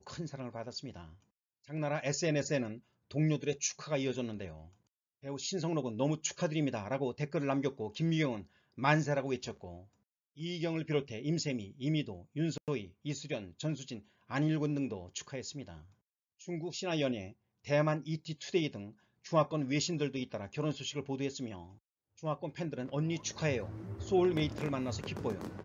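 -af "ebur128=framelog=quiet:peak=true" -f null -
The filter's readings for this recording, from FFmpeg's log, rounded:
Integrated loudness:
  I:         -35.4 LUFS
  Threshold: -46.0 LUFS
Loudness range:
  LRA:         3.7 LU
  Threshold: -56.1 LUFS
  LRA low:   -38.1 LUFS
  LRA high:  -34.4 LUFS
True peak:
  Peak:      -12.8 dBFS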